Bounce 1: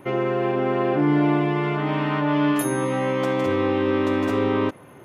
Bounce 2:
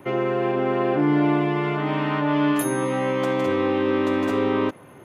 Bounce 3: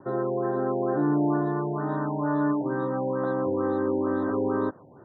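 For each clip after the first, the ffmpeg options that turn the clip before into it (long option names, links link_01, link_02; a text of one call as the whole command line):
ffmpeg -i in.wav -filter_complex "[0:a]bandreject=frequency=5400:width=28,acrossover=split=120|1600|4400[link_01][link_02][link_03][link_04];[link_01]acompressor=threshold=-45dB:ratio=6[link_05];[link_05][link_02][link_03][link_04]amix=inputs=4:normalize=0" out.wav
ffmpeg -i in.wav -af "asuperstop=centerf=2600:order=12:qfactor=1.2,afftfilt=real='re*lt(b*sr/1024,940*pow(4100/940,0.5+0.5*sin(2*PI*2.2*pts/sr)))':imag='im*lt(b*sr/1024,940*pow(4100/940,0.5+0.5*sin(2*PI*2.2*pts/sr)))':win_size=1024:overlap=0.75,volume=-4dB" out.wav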